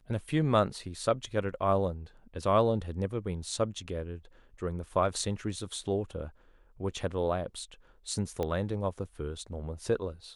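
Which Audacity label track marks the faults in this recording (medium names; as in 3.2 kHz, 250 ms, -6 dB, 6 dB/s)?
8.430000	8.430000	pop -20 dBFS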